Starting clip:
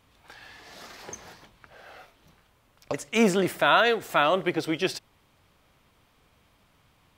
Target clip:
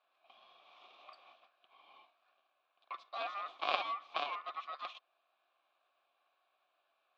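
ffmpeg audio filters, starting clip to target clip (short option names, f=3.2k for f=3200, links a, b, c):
-filter_complex "[0:a]aemphasis=mode=production:type=50fm,aeval=exprs='0.562*(cos(1*acos(clip(val(0)/0.562,-1,1)))-cos(1*PI/2))+0.224*(cos(3*acos(clip(val(0)/0.562,-1,1)))-cos(3*PI/2))+0.0158*(cos(7*acos(clip(val(0)/0.562,-1,1)))-cos(7*PI/2))':c=same,aeval=exprs='val(0)*sin(2*PI*1600*n/s)':c=same,asplit=3[a][b][c];[a]bandpass=f=730:t=q:w=8,volume=0dB[d];[b]bandpass=f=1.09k:t=q:w=8,volume=-6dB[e];[c]bandpass=f=2.44k:t=q:w=8,volume=-9dB[f];[d][e][f]amix=inputs=3:normalize=0,highpass=330,equalizer=f=460:t=q:w=4:g=-8,equalizer=f=750:t=q:w=4:g=-7,equalizer=f=1.5k:t=q:w=4:g=-6,equalizer=f=2.6k:t=q:w=4:g=-7,equalizer=f=3.7k:t=q:w=4:g=5,lowpass=f=4k:w=0.5412,lowpass=f=4k:w=1.3066,volume=12.5dB"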